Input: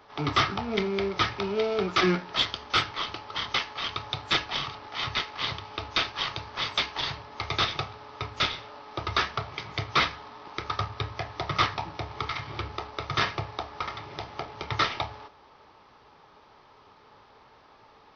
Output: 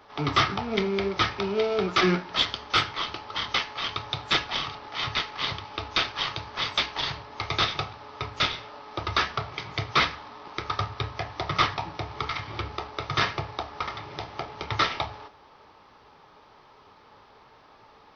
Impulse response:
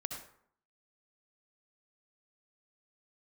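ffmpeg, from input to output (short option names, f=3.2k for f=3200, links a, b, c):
-filter_complex "[0:a]flanger=delay=3.5:depth=3.2:regen=-84:speed=0.88:shape=sinusoidal,asplit=2[a][b];[1:a]atrim=start_sample=2205[c];[b][c]afir=irnorm=-1:irlink=0,volume=-17dB[d];[a][d]amix=inputs=2:normalize=0,volume=5dB"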